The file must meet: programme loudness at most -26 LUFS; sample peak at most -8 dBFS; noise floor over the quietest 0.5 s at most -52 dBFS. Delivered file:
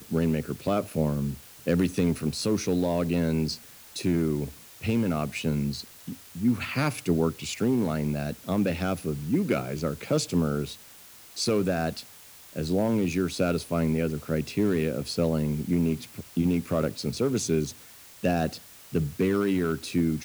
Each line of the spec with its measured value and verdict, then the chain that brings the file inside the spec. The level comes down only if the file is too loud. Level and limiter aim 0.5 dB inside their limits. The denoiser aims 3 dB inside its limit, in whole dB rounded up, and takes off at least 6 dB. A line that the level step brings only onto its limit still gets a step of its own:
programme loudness -27.5 LUFS: pass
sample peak -11.5 dBFS: pass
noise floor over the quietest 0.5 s -49 dBFS: fail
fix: noise reduction 6 dB, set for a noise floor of -49 dBFS

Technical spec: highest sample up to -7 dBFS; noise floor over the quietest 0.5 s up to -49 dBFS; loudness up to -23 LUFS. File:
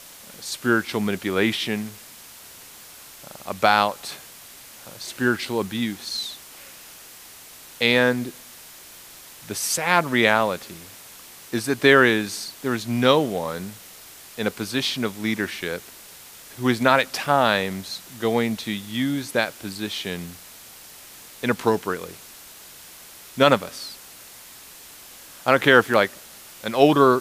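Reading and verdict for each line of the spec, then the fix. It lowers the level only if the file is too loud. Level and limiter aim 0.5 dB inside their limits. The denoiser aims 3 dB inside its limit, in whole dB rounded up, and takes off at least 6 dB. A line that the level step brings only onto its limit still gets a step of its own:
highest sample -1.5 dBFS: fail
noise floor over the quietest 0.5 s -44 dBFS: fail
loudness -22.0 LUFS: fail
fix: noise reduction 7 dB, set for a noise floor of -44 dBFS; trim -1.5 dB; peak limiter -7.5 dBFS

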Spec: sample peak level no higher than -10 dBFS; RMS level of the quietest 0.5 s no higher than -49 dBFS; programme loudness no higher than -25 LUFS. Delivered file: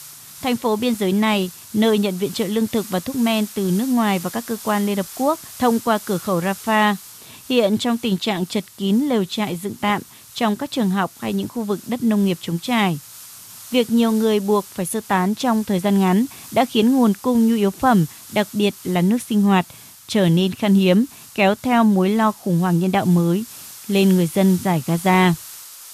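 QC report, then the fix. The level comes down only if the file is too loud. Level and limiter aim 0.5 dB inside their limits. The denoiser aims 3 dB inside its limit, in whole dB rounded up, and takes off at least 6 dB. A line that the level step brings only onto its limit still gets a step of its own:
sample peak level -5.0 dBFS: fail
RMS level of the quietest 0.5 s -41 dBFS: fail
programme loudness -19.5 LUFS: fail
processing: noise reduction 6 dB, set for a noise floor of -41 dBFS; trim -6 dB

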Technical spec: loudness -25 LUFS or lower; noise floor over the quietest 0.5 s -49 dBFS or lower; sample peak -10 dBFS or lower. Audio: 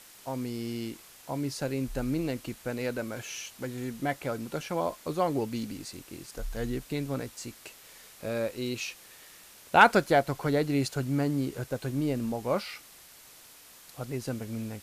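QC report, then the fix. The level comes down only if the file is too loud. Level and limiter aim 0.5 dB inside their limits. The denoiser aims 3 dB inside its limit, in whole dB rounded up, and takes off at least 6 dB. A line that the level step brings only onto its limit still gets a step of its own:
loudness -30.5 LUFS: pass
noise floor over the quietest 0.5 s -53 dBFS: pass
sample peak -6.0 dBFS: fail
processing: peak limiter -10.5 dBFS

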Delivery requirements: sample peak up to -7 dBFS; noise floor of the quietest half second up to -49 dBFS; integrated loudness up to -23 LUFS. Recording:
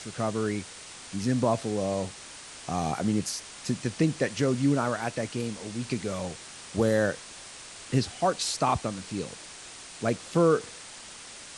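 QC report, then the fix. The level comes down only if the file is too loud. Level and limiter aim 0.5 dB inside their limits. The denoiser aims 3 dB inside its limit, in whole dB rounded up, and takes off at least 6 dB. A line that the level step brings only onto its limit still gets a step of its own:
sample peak -11.5 dBFS: pass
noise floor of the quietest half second -45 dBFS: fail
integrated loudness -29.0 LUFS: pass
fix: noise reduction 7 dB, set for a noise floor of -45 dBFS

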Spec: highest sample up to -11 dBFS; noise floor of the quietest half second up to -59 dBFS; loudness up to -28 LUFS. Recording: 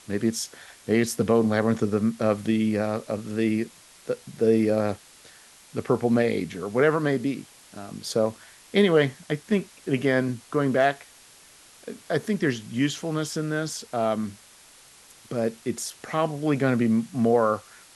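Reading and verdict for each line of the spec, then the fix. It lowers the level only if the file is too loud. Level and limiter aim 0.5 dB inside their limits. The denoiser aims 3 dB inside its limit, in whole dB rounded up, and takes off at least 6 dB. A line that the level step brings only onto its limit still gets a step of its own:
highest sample -7.5 dBFS: fail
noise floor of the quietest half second -52 dBFS: fail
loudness -25.0 LUFS: fail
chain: noise reduction 7 dB, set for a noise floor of -52 dBFS; trim -3.5 dB; peak limiter -11.5 dBFS

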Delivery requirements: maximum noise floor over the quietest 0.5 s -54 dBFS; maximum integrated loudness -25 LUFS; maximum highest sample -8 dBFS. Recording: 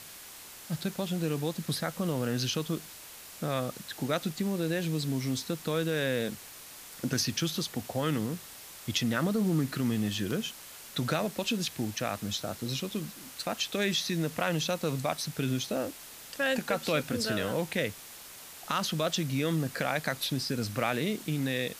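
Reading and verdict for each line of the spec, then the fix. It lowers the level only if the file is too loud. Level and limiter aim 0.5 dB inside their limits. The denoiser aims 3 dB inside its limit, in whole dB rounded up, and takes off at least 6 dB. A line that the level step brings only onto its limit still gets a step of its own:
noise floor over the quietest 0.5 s -48 dBFS: fail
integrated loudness -31.5 LUFS: pass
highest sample -12.5 dBFS: pass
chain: noise reduction 9 dB, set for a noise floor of -48 dBFS

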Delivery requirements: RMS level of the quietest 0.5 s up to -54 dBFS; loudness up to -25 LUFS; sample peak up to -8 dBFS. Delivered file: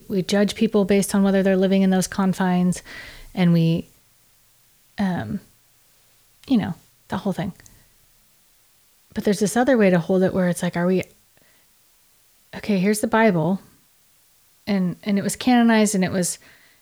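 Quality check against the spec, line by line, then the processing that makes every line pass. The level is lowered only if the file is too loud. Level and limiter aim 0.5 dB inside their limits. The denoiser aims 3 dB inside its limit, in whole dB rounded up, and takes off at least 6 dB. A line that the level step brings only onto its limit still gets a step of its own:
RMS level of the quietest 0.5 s -58 dBFS: pass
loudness -20.5 LUFS: fail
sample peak -6.0 dBFS: fail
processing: trim -5 dB

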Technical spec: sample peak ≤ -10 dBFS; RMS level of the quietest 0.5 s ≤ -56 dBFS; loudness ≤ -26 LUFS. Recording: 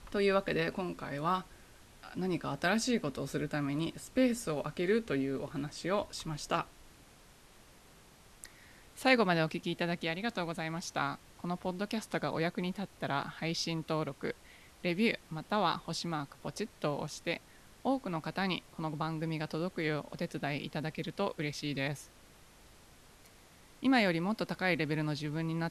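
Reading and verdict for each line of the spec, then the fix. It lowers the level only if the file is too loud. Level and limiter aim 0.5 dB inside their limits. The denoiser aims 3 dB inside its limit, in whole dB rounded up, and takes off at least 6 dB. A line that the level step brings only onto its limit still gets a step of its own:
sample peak -11.5 dBFS: pass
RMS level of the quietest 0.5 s -59 dBFS: pass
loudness -34.5 LUFS: pass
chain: none needed

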